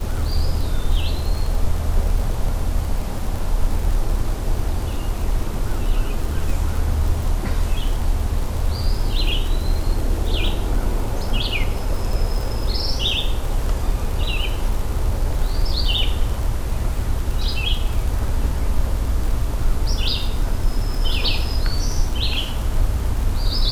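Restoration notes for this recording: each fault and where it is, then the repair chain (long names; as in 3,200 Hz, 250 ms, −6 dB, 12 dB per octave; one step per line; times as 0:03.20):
surface crackle 46 per second −25 dBFS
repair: click removal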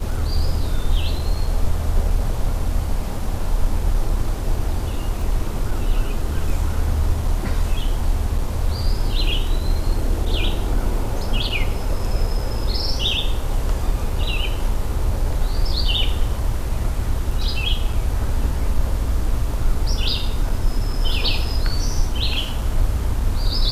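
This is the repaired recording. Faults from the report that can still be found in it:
none of them is left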